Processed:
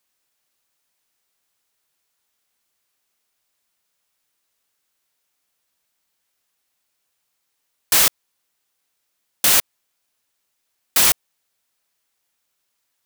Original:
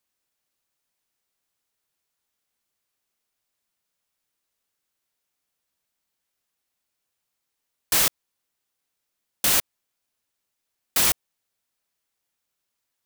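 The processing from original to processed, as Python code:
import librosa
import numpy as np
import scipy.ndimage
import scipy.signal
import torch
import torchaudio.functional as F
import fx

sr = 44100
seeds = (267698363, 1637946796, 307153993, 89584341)

p1 = fx.low_shelf(x, sr, hz=430.0, db=-5.0)
p2 = 10.0 ** (-21.0 / 20.0) * np.tanh(p1 / 10.0 ** (-21.0 / 20.0))
p3 = p1 + (p2 * 10.0 ** (-4.5 / 20.0))
y = p3 * 10.0 ** (3.0 / 20.0)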